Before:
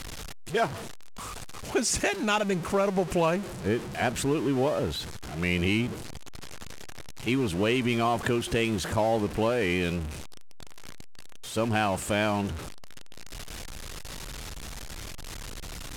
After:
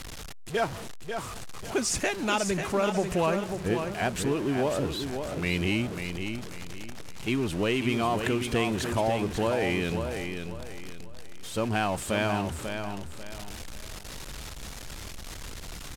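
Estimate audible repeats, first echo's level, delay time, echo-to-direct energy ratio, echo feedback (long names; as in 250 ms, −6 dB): 3, −7.0 dB, 542 ms, −6.5 dB, 32%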